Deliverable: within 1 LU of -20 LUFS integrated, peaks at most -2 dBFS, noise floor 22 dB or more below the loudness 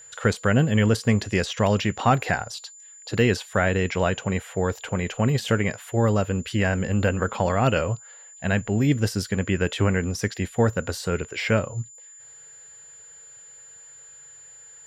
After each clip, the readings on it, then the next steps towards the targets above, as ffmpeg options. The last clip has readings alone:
steady tone 7.1 kHz; tone level -44 dBFS; loudness -24.0 LUFS; peak level -7.5 dBFS; loudness target -20.0 LUFS
-> -af "bandreject=f=7100:w=30"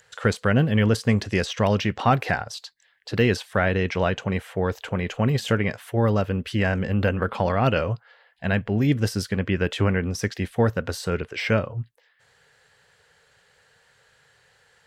steady tone not found; loudness -24.0 LUFS; peak level -8.0 dBFS; loudness target -20.0 LUFS
-> -af "volume=1.58"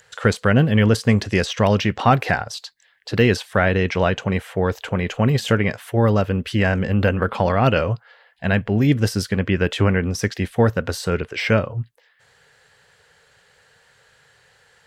loudness -20.0 LUFS; peak level -4.0 dBFS; noise floor -58 dBFS

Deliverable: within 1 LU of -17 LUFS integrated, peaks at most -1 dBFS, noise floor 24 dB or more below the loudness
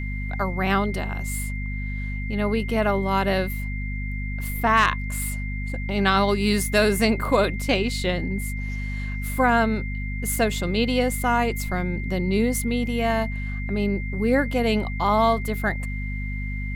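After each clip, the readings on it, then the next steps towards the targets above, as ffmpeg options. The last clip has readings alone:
hum 50 Hz; highest harmonic 250 Hz; hum level -26 dBFS; steady tone 2.1 kHz; tone level -35 dBFS; loudness -24.0 LUFS; peak level -6.0 dBFS; loudness target -17.0 LUFS
-> -af "bandreject=f=50:t=h:w=6,bandreject=f=100:t=h:w=6,bandreject=f=150:t=h:w=6,bandreject=f=200:t=h:w=6,bandreject=f=250:t=h:w=6"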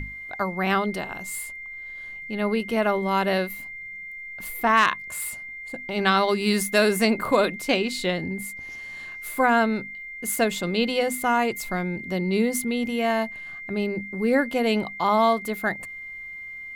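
hum not found; steady tone 2.1 kHz; tone level -35 dBFS
-> -af "bandreject=f=2100:w=30"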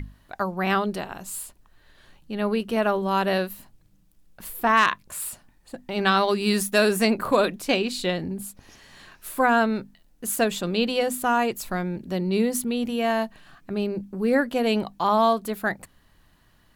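steady tone not found; loudness -24.5 LUFS; peak level -6.5 dBFS; loudness target -17.0 LUFS
-> -af "volume=2.37,alimiter=limit=0.891:level=0:latency=1"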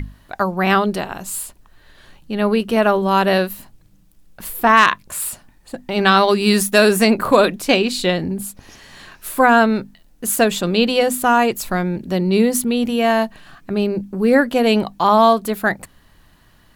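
loudness -17.0 LUFS; peak level -1.0 dBFS; noise floor -52 dBFS

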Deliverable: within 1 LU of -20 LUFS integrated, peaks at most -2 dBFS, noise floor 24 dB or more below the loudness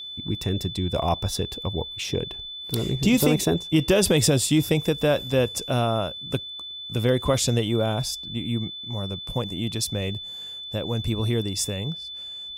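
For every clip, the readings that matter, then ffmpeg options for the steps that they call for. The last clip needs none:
steady tone 3.5 kHz; tone level -34 dBFS; loudness -25.0 LUFS; peak level -5.5 dBFS; loudness target -20.0 LUFS
-> -af "bandreject=f=3500:w=30"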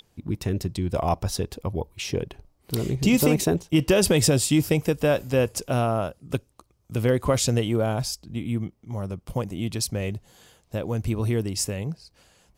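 steady tone not found; loudness -25.0 LUFS; peak level -6.0 dBFS; loudness target -20.0 LUFS
-> -af "volume=1.78,alimiter=limit=0.794:level=0:latency=1"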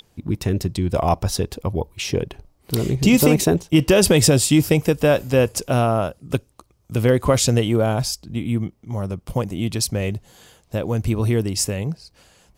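loudness -20.0 LUFS; peak level -2.0 dBFS; noise floor -60 dBFS

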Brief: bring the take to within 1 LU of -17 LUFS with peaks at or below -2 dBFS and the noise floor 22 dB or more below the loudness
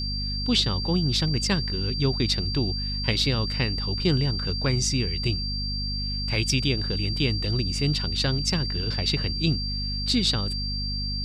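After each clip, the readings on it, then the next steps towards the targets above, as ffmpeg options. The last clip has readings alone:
hum 50 Hz; highest harmonic 250 Hz; hum level -28 dBFS; steady tone 4.7 kHz; tone level -30 dBFS; loudness -25.0 LUFS; peak level -9.0 dBFS; loudness target -17.0 LUFS
-> -af "bandreject=f=50:t=h:w=6,bandreject=f=100:t=h:w=6,bandreject=f=150:t=h:w=6,bandreject=f=200:t=h:w=6,bandreject=f=250:t=h:w=6"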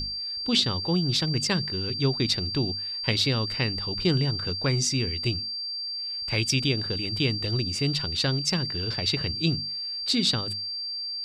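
hum not found; steady tone 4.7 kHz; tone level -30 dBFS
-> -af "bandreject=f=4700:w=30"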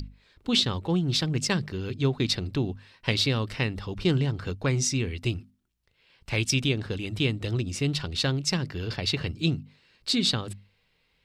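steady tone not found; loudness -27.5 LUFS; peak level -9.0 dBFS; loudness target -17.0 LUFS
-> -af "volume=3.35,alimiter=limit=0.794:level=0:latency=1"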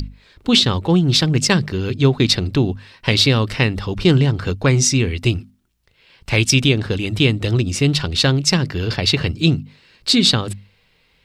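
loudness -17.0 LUFS; peak level -2.0 dBFS; noise floor -59 dBFS

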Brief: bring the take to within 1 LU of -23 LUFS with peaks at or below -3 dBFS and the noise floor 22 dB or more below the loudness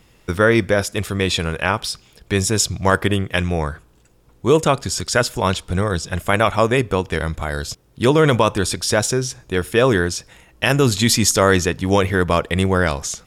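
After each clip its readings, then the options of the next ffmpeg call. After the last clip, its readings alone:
loudness -18.5 LUFS; peak level -3.0 dBFS; loudness target -23.0 LUFS
-> -af "volume=0.596"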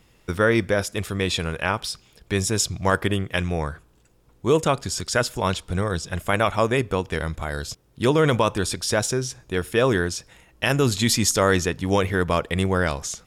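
loudness -23.0 LUFS; peak level -7.5 dBFS; noise floor -58 dBFS

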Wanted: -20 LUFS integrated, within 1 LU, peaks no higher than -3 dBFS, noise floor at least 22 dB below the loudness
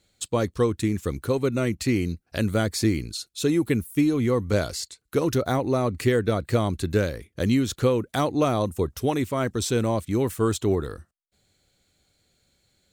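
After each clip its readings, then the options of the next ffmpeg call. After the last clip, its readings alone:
loudness -25.0 LUFS; peak level -10.0 dBFS; loudness target -20.0 LUFS
-> -af "volume=1.78"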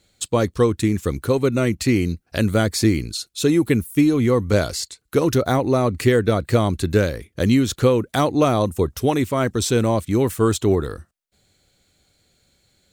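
loudness -20.0 LUFS; peak level -5.0 dBFS; noise floor -68 dBFS

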